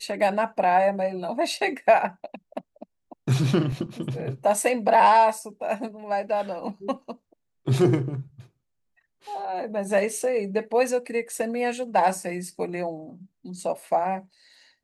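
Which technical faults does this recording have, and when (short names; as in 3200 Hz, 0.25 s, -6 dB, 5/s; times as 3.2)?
3.72 gap 3.1 ms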